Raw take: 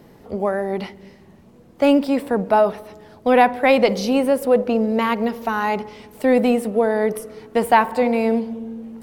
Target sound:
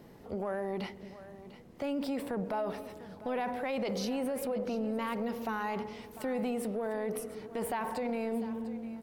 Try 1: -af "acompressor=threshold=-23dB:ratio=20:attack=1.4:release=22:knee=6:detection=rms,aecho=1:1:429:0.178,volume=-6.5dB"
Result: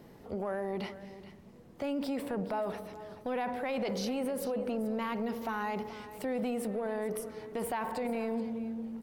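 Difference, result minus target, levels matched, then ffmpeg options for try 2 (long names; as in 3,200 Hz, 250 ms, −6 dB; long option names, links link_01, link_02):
echo 270 ms early
-af "acompressor=threshold=-23dB:ratio=20:attack=1.4:release=22:knee=6:detection=rms,aecho=1:1:699:0.178,volume=-6.5dB"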